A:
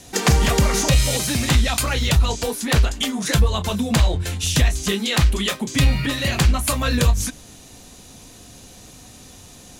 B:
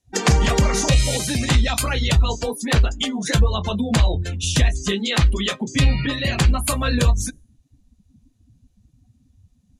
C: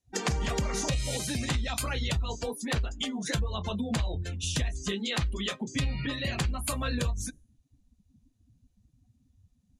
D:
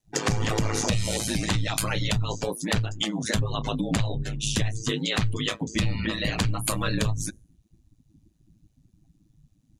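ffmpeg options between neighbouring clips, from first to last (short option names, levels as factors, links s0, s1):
-af "afftdn=nr=33:nf=-31"
-af "acompressor=threshold=0.141:ratio=6,volume=0.376"
-af "aeval=exprs='val(0)*sin(2*PI*54*n/s)':c=same,volume=2.37"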